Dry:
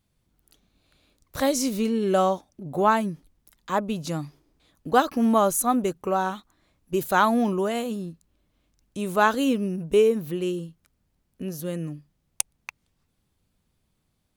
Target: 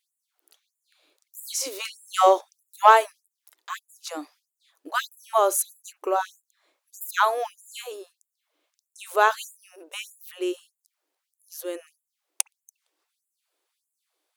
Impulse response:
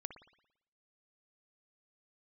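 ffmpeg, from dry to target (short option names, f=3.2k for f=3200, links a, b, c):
-filter_complex "[0:a]asplit=3[a][b][c];[a]afade=t=out:st=1.79:d=0.02[d];[b]acontrast=86,afade=t=in:st=1.79:d=0.02,afade=t=out:st=3.11:d=0.02[e];[c]afade=t=in:st=3.11:d=0.02[f];[d][e][f]amix=inputs=3:normalize=0,asplit=2[g][h];[1:a]atrim=start_sample=2205,atrim=end_sample=3087[i];[h][i]afir=irnorm=-1:irlink=0,volume=-7.5dB[j];[g][j]amix=inputs=2:normalize=0,afftfilt=real='re*gte(b*sr/1024,260*pow(7000/260,0.5+0.5*sin(2*PI*1.6*pts/sr)))':imag='im*gte(b*sr/1024,260*pow(7000/260,0.5+0.5*sin(2*PI*1.6*pts/sr)))':win_size=1024:overlap=0.75,volume=-1dB"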